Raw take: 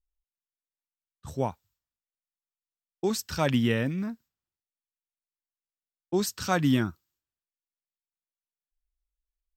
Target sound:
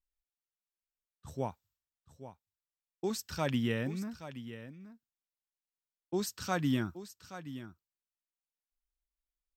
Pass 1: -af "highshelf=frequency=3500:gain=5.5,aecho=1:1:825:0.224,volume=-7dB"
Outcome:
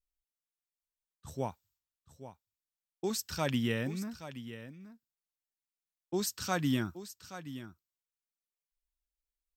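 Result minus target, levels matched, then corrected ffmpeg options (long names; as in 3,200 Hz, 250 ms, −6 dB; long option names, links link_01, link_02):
8,000 Hz band +4.0 dB
-af "aecho=1:1:825:0.224,volume=-7dB"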